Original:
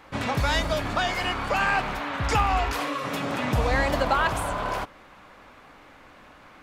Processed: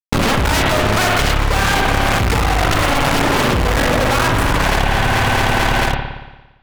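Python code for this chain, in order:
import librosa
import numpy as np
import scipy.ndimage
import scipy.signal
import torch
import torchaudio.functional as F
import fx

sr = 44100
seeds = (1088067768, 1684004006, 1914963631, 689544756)

y = fx.highpass(x, sr, hz=78.0, slope=24, at=(0.51, 1.18))
y = fx.dereverb_blind(y, sr, rt60_s=0.75)
y = fx.lowpass(y, sr, hz=2800.0, slope=6)
y = fx.low_shelf(y, sr, hz=230.0, db=10.5)
y = fx.cheby_harmonics(y, sr, harmonics=(4, 6, 7), levels_db=(-10, -31, -16), full_scale_db=-10.5)
y = fx.fuzz(y, sr, gain_db=46.0, gate_db=-42.0)
y = fx.echo_feedback(y, sr, ms=220, feedback_pct=53, wet_db=-13.5)
y = fx.rev_spring(y, sr, rt60_s=1.1, pass_ms=(57,), chirp_ms=55, drr_db=2.5)
y = fx.env_flatten(y, sr, amount_pct=100)
y = F.gain(torch.from_numpy(y), -4.5).numpy()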